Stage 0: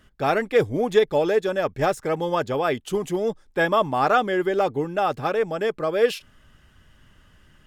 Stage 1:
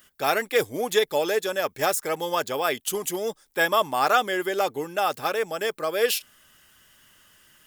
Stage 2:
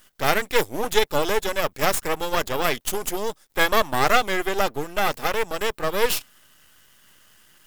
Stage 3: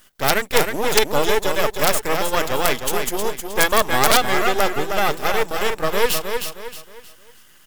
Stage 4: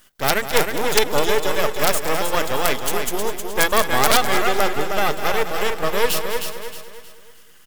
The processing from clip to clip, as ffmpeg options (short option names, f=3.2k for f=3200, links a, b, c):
-af "aemphasis=mode=production:type=riaa,volume=-1dB"
-af "aeval=exprs='max(val(0),0)':c=same,volume=5.5dB"
-af "aecho=1:1:313|626|939|1252:0.501|0.175|0.0614|0.0215,aeval=exprs='(mod(1.58*val(0)+1,2)-1)/1.58':c=same,volume=2.5dB"
-af "aecho=1:1:205|410|615|820:0.266|0.104|0.0405|0.0158,volume=-1dB"